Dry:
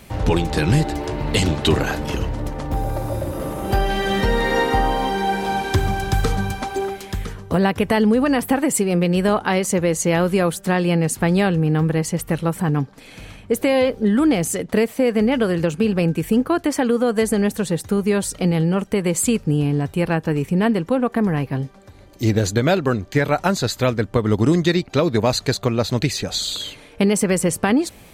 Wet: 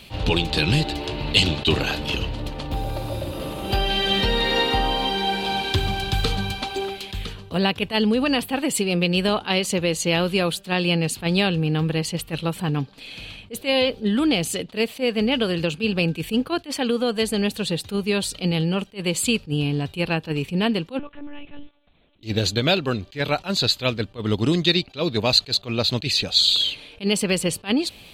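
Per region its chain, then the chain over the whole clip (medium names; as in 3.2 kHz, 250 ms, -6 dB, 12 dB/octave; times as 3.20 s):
20.99–22.23 s: gate -38 dBFS, range -12 dB + compression, threshold -27 dBFS + monotone LPC vocoder at 8 kHz 290 Hz
whole clip: high-order bell 3.4 kHz +12.5 dB 1.1 oct; attacks held to a fixed rise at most 320 dB/s; trim -4 dB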